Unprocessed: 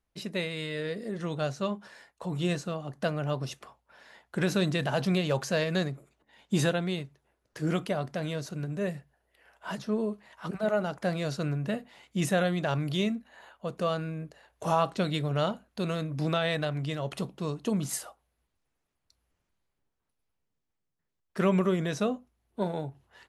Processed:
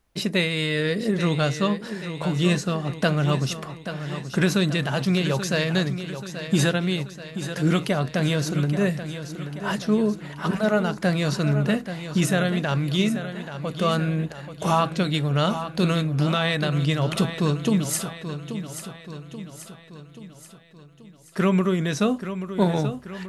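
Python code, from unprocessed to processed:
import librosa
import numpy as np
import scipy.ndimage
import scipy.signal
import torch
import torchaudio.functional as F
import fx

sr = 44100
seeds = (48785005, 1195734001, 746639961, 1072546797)

p1 = fx.dynamic_eq(x, sr, hz=630.0, q=1.1, threshold_db=-42.0, ratio=4.0, max_db=-6)
p2 = fx.rider(p1, sr, range_db=4, speed_s=0.5)
p3 = p2 + fx.echo_feedback(p2, sr, ms=832, feedback_pct=53, wet_db=-10.5, dry=0)
y = p3 * 10.0 ** (9.0 / 20.0)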